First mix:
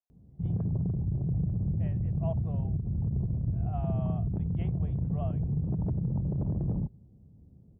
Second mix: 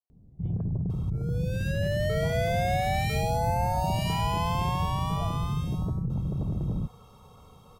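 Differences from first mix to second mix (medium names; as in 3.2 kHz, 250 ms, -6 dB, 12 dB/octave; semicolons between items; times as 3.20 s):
first sound: remove high-pass 45 Hz; second sound: unmuted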